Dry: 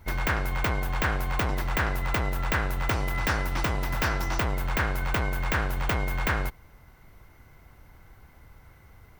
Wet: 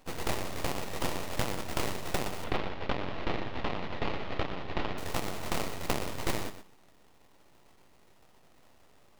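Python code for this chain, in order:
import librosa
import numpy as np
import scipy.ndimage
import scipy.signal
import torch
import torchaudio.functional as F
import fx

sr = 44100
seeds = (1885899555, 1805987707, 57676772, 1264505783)

y = fx.highpass(x, sr, hz=250.0, slope=6)
y = fx.sample_hold(y, sr, seeds[0], rate_hz=1900.0, jitter_pct=20)
y = fx.tilt_shelf(y, sr, db=-3.0, hz=1300.0)
y = np.abs(y)
y = fx.lowpass(y, sr, hz=3800.0, slope=24, at=(2.44, 4.98))
y = fx.echo_feedback(y, sr, ms=121, feedback_pct=16, wet_db=-10.5)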